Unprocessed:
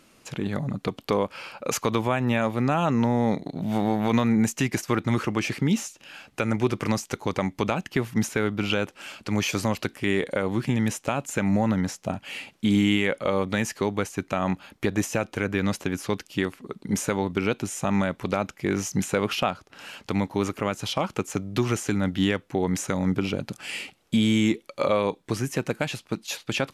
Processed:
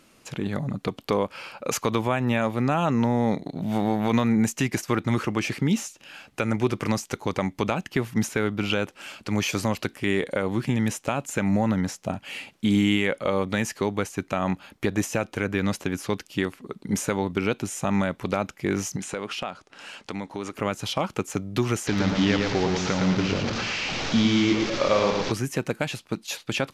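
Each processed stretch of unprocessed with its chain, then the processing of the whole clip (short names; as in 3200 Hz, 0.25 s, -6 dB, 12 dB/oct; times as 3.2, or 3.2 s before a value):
18.96–20.55 LPF 10000 Hz 24 dB/oct + bell 79 Hz -9 dB 2 oct + compressor 2:1, threshold -31 dBFS
21.87–25.32 delta modulation 32 kbps, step -24 dBFS + feedback echo 0.113 s, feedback 35%, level -4 dB
whole clip: dry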